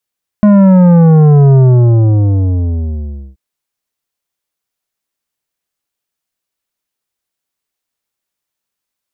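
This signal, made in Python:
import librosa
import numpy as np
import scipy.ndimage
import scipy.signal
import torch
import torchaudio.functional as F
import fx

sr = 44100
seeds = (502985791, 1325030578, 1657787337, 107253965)

y = fx.sub_drop(sr, level_db=-4.0, start_hz=210.0, length_s=2.93, drive_db=10.5, fade_s=1.81, end_hz=65.0)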